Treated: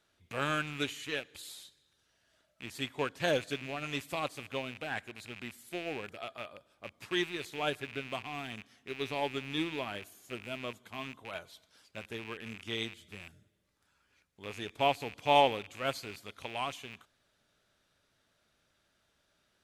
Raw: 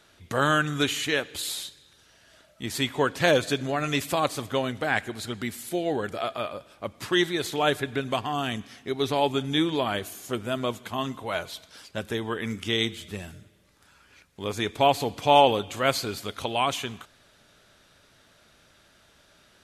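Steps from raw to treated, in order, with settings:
loose part that buzzes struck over −41 dBFS, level −19 dBFS
expander for the loud parts 1.5 to 1, over −32 dBFS
level −6.5 dB

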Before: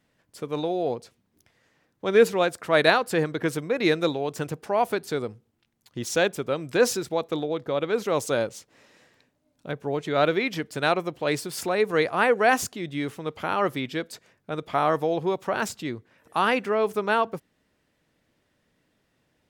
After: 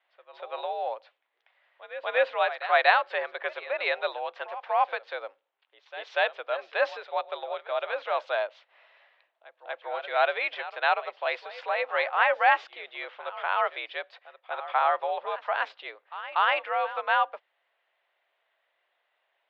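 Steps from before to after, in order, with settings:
single-sideband voice off tune +72 Hz 560–3,500 Hz
echo ahead of the sound 240 ms −15 dB

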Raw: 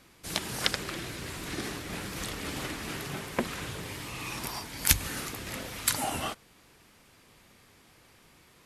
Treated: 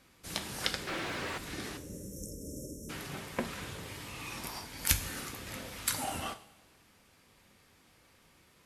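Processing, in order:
0:01.77–0:02.90: time-frequency box erased 620–5,300 Hz
coupled-rooms reverb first 0.42 s, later 1.5 s, from −15 dB, DRR 7 dB
0:00.87–0:01.38: mid-hump overdrive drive 28 dB, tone 1,300 Hz, clips at −19 dBFS
level −5.5 dB

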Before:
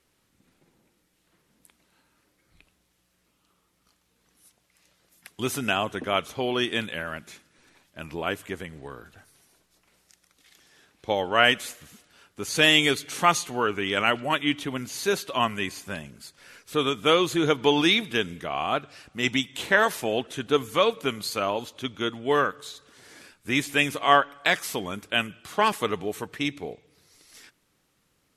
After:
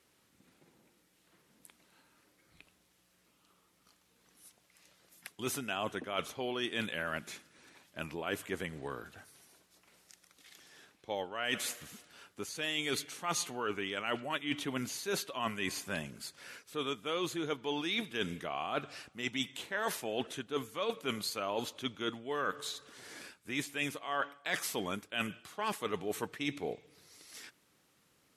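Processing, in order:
reversed playback
downward compressor 20 to 1, threshold −31 dBFS, peak gain reduction 20 dB
reversed playback
high-pass filter 130 Hz 6 dB per octave

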